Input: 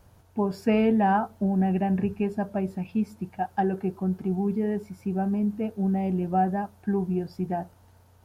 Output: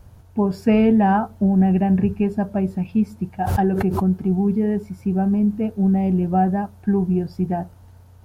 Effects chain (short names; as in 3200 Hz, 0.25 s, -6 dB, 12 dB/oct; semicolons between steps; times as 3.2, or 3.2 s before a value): low shelf 180 Hz +10 dB; 3.4–4.06 backwards sustainer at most 37 dB/s; gain +3 dB